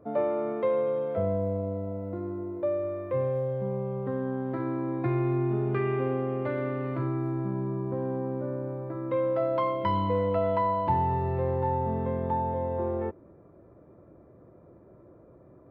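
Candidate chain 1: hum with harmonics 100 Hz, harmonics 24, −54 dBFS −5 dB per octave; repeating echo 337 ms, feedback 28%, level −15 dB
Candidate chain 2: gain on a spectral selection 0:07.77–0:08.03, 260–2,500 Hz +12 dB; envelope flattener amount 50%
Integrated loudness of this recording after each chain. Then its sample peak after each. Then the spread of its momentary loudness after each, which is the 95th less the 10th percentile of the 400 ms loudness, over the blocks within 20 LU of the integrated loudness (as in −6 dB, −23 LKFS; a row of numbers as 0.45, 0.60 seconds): −29.0, −25.0 LKFS; −13.5, −10.5 dBFS; 7, 14 LU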